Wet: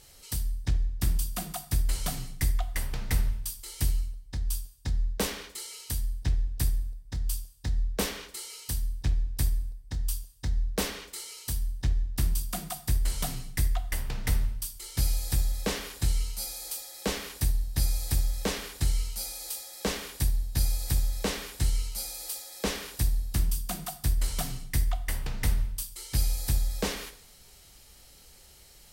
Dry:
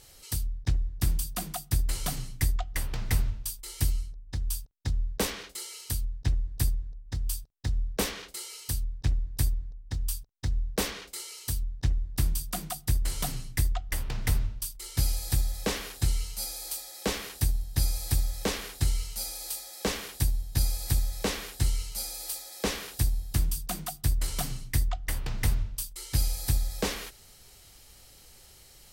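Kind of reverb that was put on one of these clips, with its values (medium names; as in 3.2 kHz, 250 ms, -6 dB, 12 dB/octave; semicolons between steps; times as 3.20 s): two-slope reverb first 0.63 s, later 1.8 s, from -26 dB, DRR 9.5 dB; trim -1 dB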